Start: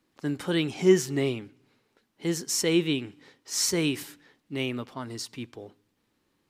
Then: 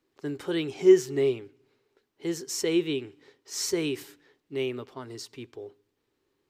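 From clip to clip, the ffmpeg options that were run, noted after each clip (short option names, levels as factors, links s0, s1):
-af "equalizer=f=200:t=o:w=0.33:g=-11,equalizer=f=400:t=o:w=0.33:g=11,equalizer=f=10000:t=o:w=0.33:g=-5,volume=0.596"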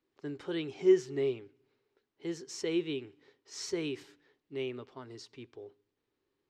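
-af "lowpass=5600,volume=0.473"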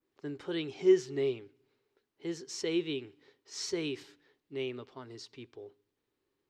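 -af "adynamicequalizer=threshold=0.00224:dfrequency=4200:dqfactor=1.2:tfrequency=4200:tqfactor=1.2:attack=5:release=100:ratio=0.375:range=2:mode=boostabove:tftype=bell"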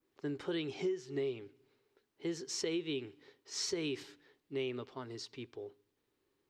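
-af "acompressor=threshold=0.02:ratio=20,volume=1.26"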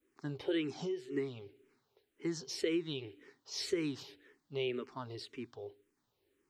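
-filter_complex "[0:a]asplit=2[s0][s1];[s1]afreqshift=-1.9[s2];[s0][s2]amix=inputs=2:normalize=1,volume=1.58"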